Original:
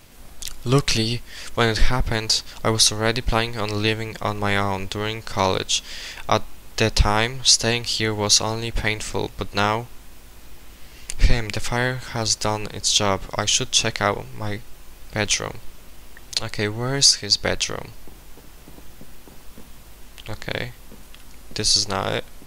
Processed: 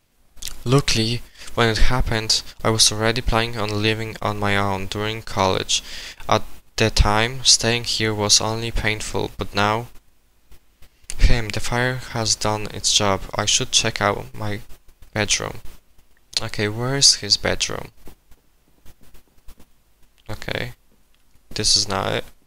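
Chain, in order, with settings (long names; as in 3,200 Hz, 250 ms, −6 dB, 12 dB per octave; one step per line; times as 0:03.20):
noise gate −33 dBFS, range −17 dB
level +1.5 dB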